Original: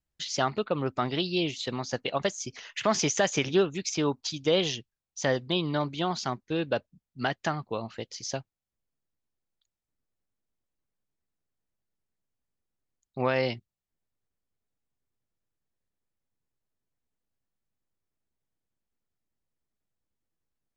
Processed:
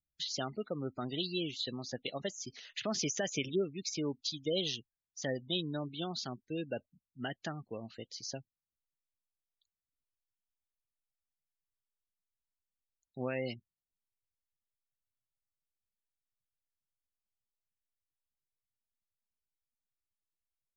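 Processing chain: spectral gate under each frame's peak -20 dB strong; fifteen-band graphic EQ 250 Hz +3 dB, 1 kHz -10 dB, 4 kHz +9 dB; trim -9 dB

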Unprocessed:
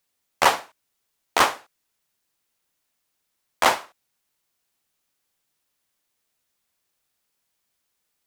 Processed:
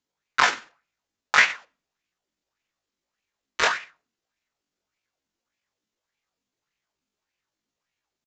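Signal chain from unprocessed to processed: bass shelf 230 Hz +4.5 dB; pitch shift +10.5 st; on a send at -22 dB: reverberation RT60 0.40 s, pre-delay 62 ms; on the sum: resampled via 16 kHz; sweeping bell 1.7 Hz 230–2500 Hz +11 dB; trim -4 dB

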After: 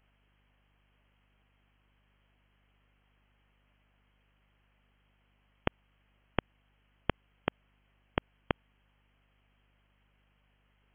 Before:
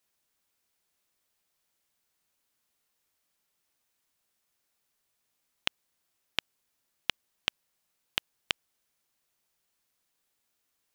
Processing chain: peak limiter -15.5 dBFS, peak gain reduction 10.5 dB; frequency inversion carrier 3.2 kHz; hum 50 Hz, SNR 26 dB; trim +11 dB

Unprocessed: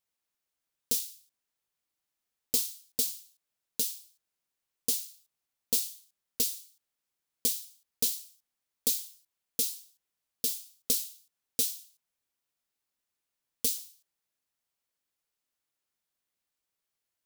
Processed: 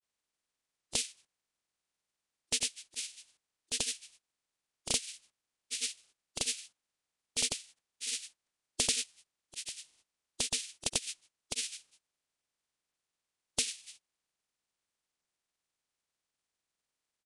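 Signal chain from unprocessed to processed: spectral peaks clipped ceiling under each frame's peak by 21 dB; granulator 100 ms, grains 20 per s, spray 100 ms; resampled via 22.05 kHz; trim +2.5 dB

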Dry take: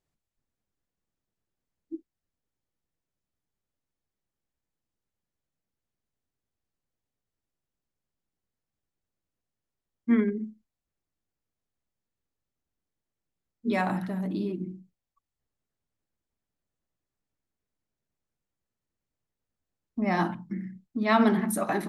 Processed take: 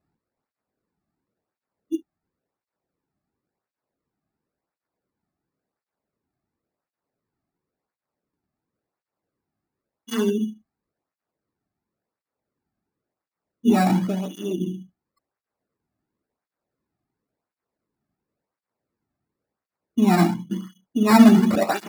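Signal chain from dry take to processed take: sample-and-hold 14×; tilt shelf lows +4.5 dB, about 930 Hz; cancelling through-zero flanger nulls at 0.94 Hz, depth 2.2 ms; trim +8 dB

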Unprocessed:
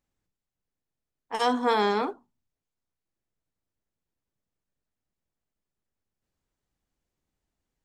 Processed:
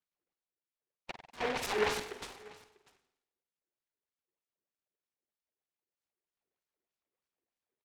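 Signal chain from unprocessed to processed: slices played last to first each 111 ms, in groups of 3; wah-wah 3.2 Hz 360–2800 Hz, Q 7.1; in parallel at -2 dB: peak limiter -34 dBFS, peak gain reduction 11 dB; on the sum: delay 644 ms -22 dB; on a send at -7.5 dB: reverberation RT60 0.85 s, pre-delay 47 ms; on the sum: delay time shaken by noise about 1.3 kHz, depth 0.17 ms

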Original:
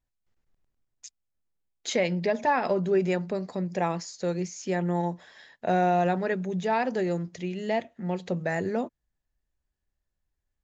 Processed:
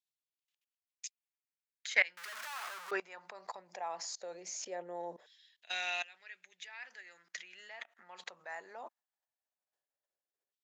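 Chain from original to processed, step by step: 2.17–2.91 s: one-bit comparator; level held to a coarse grid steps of 23 dB; LFO high-pass saw down 0.19 Hz 450–3600 Hz; trim +3.5 dB

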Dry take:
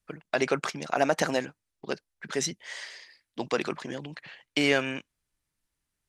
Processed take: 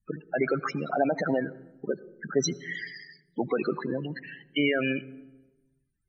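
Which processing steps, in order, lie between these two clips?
1.93–2.44 s: low-pass 1.3 kHz 6 dB/octave; peak limiter -19 dBFS, peak gain reduction 9.5 dB; loudest bins only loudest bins 16; on a send: reverberation RT60 1.1 s, pre-delay 76 ms, DRR 21 dB; on the sum: trim +6.5 dB

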